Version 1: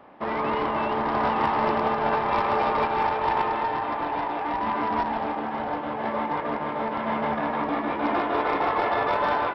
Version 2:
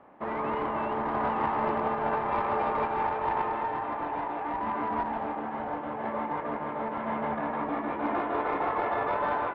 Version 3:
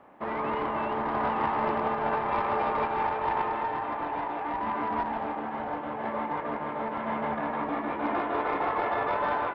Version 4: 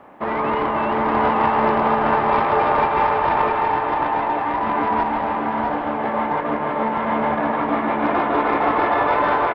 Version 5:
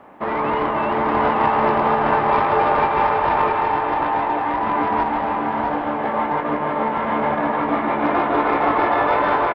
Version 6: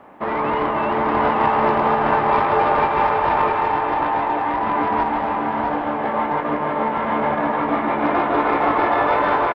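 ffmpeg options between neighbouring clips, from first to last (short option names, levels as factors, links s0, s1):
-af "lowpass=2200,volume=0.596"
-af "highshelf=f=3200:g=7.5"
-af "aecho=1:1:652:0.562,volume=2.82"
-filter_complex "[0:a]asplit=2[s0][s1];[s1]adelay=20,volume=0.282[s2];[s0][s2]amix=inputs=2:normalize=0"
-filter_complex "[0:a]asplit=2[s0][s1];[s1]adelay=250,highpass=300,lowpass=3400,asoftclip=type=hard:threshold=0.2,volume=0.1[s2];[s0][s2]amix=inputs=2:normalize=0"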